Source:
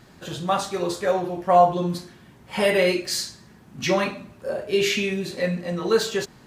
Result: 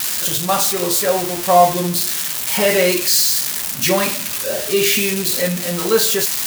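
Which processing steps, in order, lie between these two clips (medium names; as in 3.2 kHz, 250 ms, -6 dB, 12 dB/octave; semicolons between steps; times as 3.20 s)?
zero-crossing glitches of -13.5 dBFS; trim +4 dB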